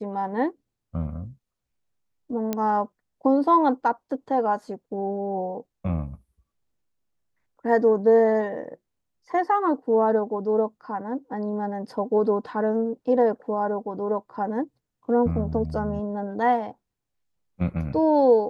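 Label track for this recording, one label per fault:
2.530000	2.530000	click −12 dBFS

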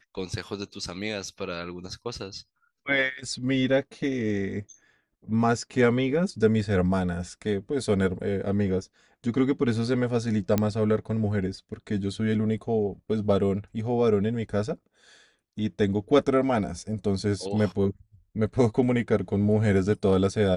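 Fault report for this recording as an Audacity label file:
10.580000	10.580000	click −10 dBFS

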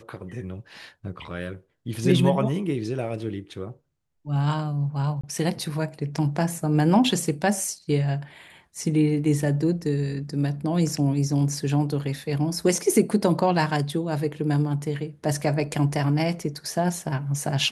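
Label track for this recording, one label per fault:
5.210000	5.240000	drop-out 25 ms

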